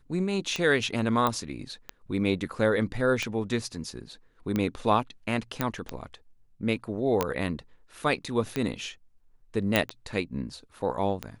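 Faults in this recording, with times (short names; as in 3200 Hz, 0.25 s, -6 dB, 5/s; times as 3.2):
tick 45 rpm -15 dBFS
1.27 pop -12 dBFS
5.61 pop -11 dBFS
7.21 pop -11 dBFS
9.76 pop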